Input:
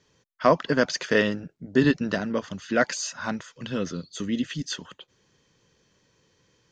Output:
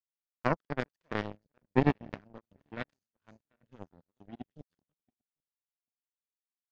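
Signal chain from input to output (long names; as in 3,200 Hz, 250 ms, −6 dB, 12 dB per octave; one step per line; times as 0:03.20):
feedback delay that plays each chunk backwards 396 ms, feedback 58%, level −13 dB
RIAA equalisation playback
power curve on the samples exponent 3
level −5.5 dB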